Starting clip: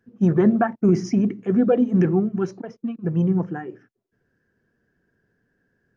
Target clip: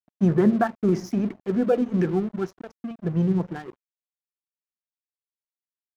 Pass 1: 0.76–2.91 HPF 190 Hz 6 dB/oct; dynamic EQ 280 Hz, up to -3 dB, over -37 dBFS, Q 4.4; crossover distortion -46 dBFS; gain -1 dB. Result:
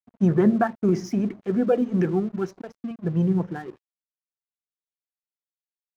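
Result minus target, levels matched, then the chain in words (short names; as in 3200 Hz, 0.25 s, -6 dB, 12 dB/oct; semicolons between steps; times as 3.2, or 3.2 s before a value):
crossover distortion: distortion -6 dB
0.76–2.91 HPF 190 Hz 6 dB/oct; dynamic EQ 280 Hz, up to -3 dB, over -37 dBFS, Q 4.4; crossover distortion -39.5 dBFS; gain -1 dB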